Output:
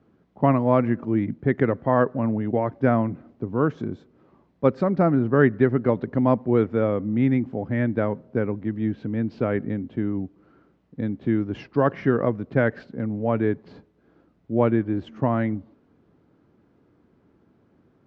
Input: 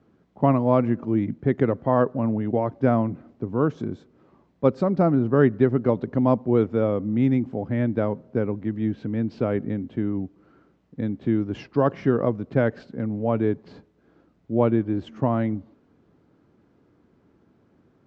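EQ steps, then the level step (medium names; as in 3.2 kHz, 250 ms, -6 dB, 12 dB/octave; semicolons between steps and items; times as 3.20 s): dynamic bell 1.8 kHz, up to +7 dB, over -45 dBFS, Q 1.7; distance through air 69 m; 0.0 dB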